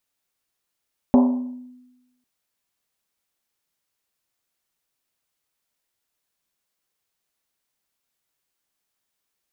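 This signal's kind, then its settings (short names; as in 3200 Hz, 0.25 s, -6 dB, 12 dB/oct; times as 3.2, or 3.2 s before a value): Risset drum, pitch 250 Hz, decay 1.07 s, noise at 790 Hz, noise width 440 Hz, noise 15%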